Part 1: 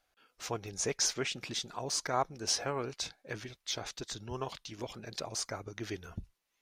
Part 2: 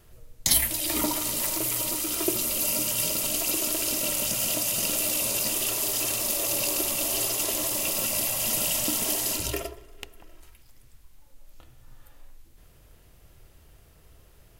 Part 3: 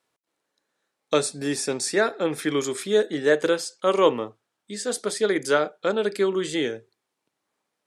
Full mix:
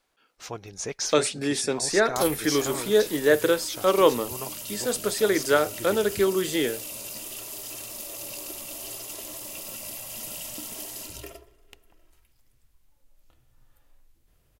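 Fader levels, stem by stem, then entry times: +0.5, -10.5, 0.0 dB; 0.00, 1.70, 0.00 s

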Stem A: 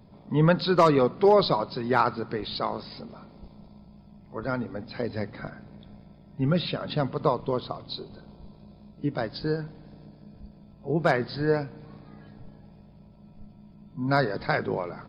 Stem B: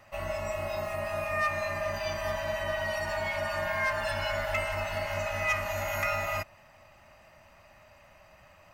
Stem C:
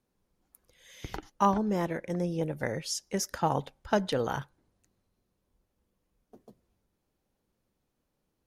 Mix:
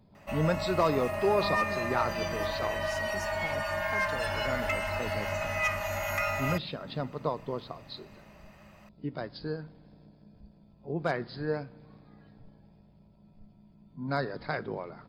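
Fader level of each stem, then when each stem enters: -7.5, -0.5, -13.0 dB; 0.00, 0.15, 0.00 s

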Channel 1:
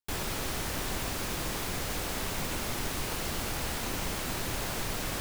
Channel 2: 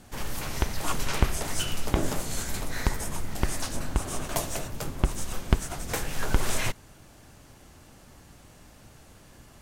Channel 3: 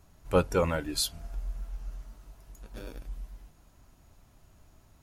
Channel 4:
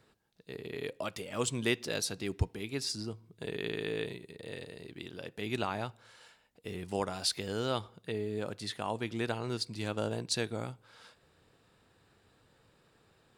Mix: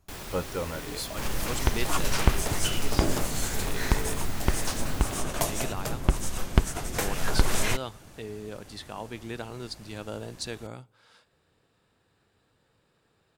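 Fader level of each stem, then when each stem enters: -6.0, +1.5, -6.5, -3.0 dB; 0.00, 1.05, 0.00, 0.10 s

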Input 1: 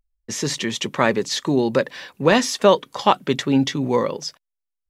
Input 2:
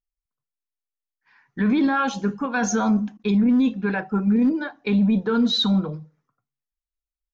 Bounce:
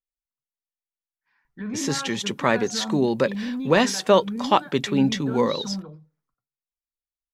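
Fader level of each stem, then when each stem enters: -2.5, -11.5 dB; 1.45, 0.00 s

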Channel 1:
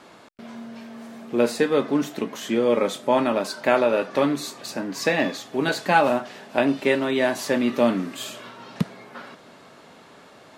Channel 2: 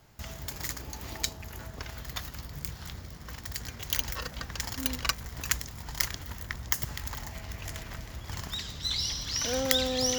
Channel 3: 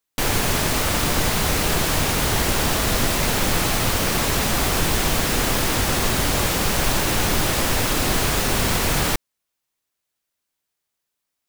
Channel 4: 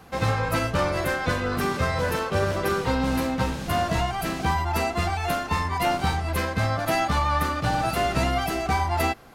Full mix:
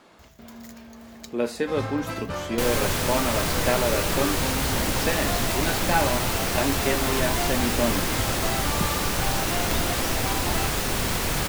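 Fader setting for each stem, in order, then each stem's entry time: -5.5, -13.0, -5.0, -8.0 dB; 0.00, 0.00, 2.40, 1.55 s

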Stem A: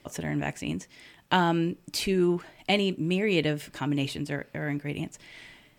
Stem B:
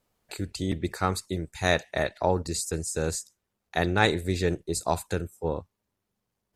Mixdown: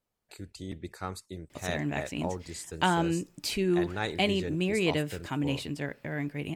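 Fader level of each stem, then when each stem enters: -2.5, -10.5 dB; 1.50, 0.00 s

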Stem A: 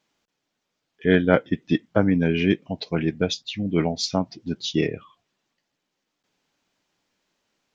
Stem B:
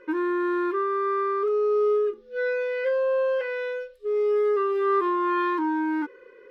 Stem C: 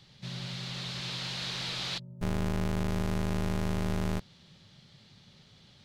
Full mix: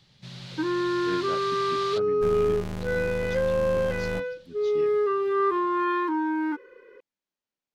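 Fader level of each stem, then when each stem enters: -20.0, -1.0, -2.5 dB; 0.00, 0.50, 0.00 s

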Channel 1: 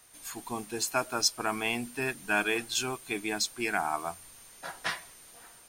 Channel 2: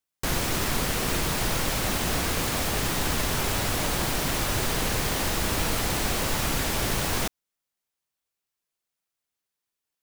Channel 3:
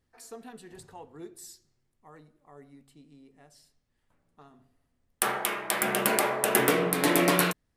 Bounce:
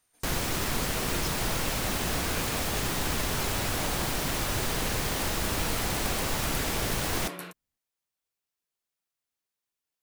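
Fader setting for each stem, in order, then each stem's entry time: -15.0, -3.0, -16.5 dB; 0.00, 0.00, 0.00 s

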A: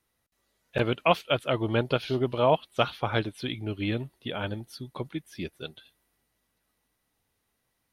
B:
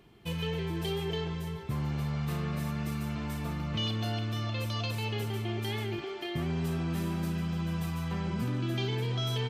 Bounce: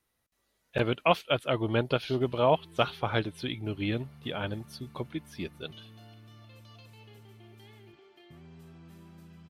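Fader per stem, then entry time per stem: -1.5, -19.5 dB; 0.00, 1.95 s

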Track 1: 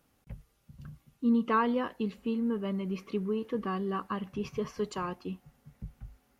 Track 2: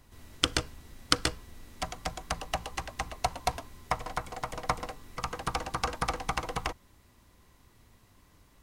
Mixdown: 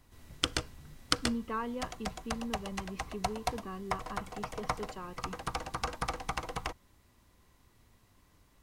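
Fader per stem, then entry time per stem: -9.0, -4.0 dB; 0.00, 0.00 s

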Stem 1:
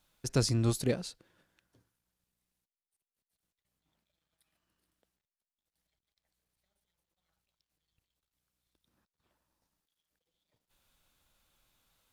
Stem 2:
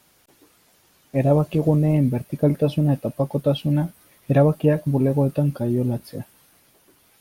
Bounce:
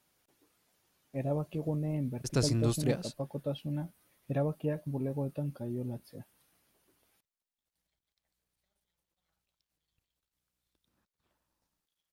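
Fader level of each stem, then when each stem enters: -1.0, -15.0 dB; 2.00, 0.00 s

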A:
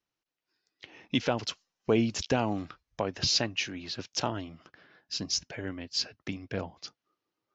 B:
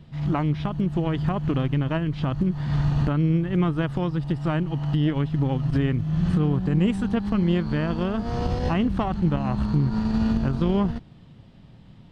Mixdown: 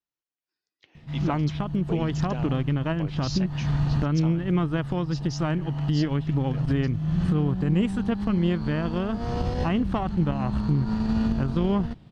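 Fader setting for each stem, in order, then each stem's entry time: -9.5, -1.5 dB; 0.00, 0.95 s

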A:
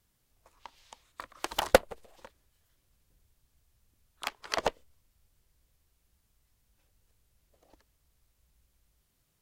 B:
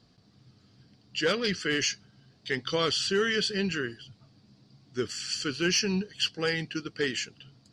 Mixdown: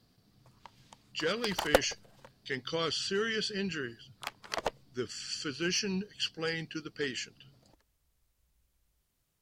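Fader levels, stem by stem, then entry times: -4.0, -5.5 dB; 0.00, 0.00 s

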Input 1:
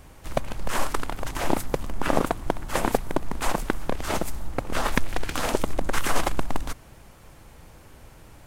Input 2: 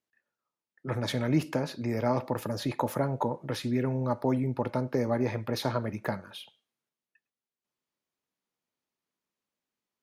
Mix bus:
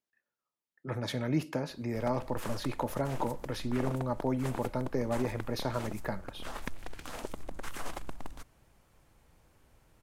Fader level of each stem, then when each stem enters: -15.5, -4.0 dB; 1.70, 0.00 s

